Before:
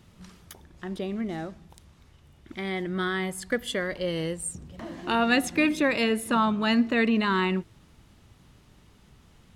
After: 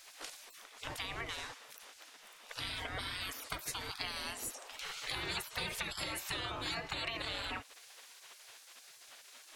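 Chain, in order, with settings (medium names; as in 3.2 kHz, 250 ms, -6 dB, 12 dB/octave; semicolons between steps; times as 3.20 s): spectral gate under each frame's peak -25 dB weak; compression 4:1, threshold -50 dBFS, peak gain reduction 12.5 dB; trim +12.5 dB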